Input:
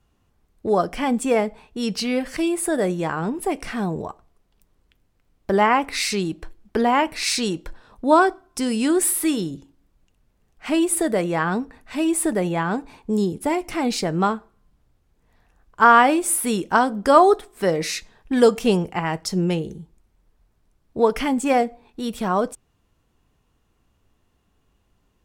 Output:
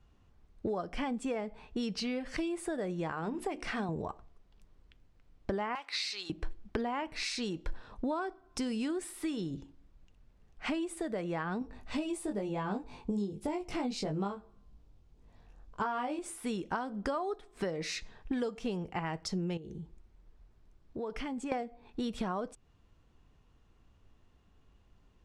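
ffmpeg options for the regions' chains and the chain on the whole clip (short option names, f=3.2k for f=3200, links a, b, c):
-filter_complex "[0:a]asettb=1/sr,asplit=3[a][b][c];[a]atrim=end=3.124[d];[b]atrim=start=3.12:end=3.89,asetpts=PTS-STARTPTS,afade=t=in:d=0.004:c=qsin,afade=t=out:st=0.766:d=0.004:c=qsin,lowshelf=f=190:g=-8.5,bandreject=f=60:t=h:w=6,bandreject=f=120:t=h:w=6,bandreject=f=180:t=h:w=6,bandreject=f=240:t=h:w=6,bandreject=f=300:t=h:w=6,bandreject=f=360:t=h:w=6[e];[c]atrim=start=3.886[f];[d][e]acrossfade=d=0.004:c1=hsin:c2=qsin[g];[g][f]acrossfade=d=0.004:c1=qsin:c2=hsin,asettb=1/sr,asplit=3[h][i][j];[h]atrim=end=5.754[k];[i]atrim=start=5.75:end=6.3,asetpts=PTS-STARTPTS,afade=t=in:d=0.004:c=qsin,afade=t=out:st=0.546:d=0.004:c=qsin,highpass=990,equalizer=f=4.2k:t=o:w=0.71:g=9,acrusher=bits=5:mode=log:mix=0:aa=0.000001[l];[j]atrim=start=6.296[m];[k][l]acrossfade=d=0.004:c1=hsin:c2=qsin[n];[n][m]acrossfade=d=0.004:c1=qsin:c2=hsin,asettb=1/sr,asplit=3[o][p][q];[o]atrim=end=11.594[r];[p]atrim=start=11.59:end=16.19,asetpts=PTS-STARTPTS,afade=t=in:d=0.004:c=qsin,afade=t=out:st=4.596:d=0.004:c=qsin,equalizer=f=1.7k:t=o:w=1.2:g=-7,asplit=2[s][t];[t]adelay=20,volume=-3dB[u];[s][u]amix=inputs=2:normalize=0,atrim=end_sample=202860[v];[q]atrim=start=16.186[w];[r][v]acrossfade=d=0.004:c1=hsin:c2=qsin[x];[x][w]acrossfade=d=0.004:c1=qsin:c2=hsin,asettb=1/sr,asplit=3[y][z][aa];[y]atrim=end=19.574[ab];[z]atrim=start=19.57:end=21.52,asetpts=PTS-STARTPTS,afade=t=in:d=0.004:c=qsin,afade=t=out:st=1.946:d=0.004:c=qsin,acompressor=threshold=-39dB:ratio=3:attack=3.2:release=140:knee=1:detection=peak,equalizer=f=360:w=4:g=3.5[ac];[aa]atrim=start=21.516[ad];[ab][ac]acrossfade=d=0.004:c1=hsin:c2=qsin[ae];[ae][ad]acrossfade=d=0.004:c1=qsin:c2=hsin,acompressor=threshold=-30dB:ratio=12,lowpass=6k,lowshelf=f=93:g=6,volume=-2dB"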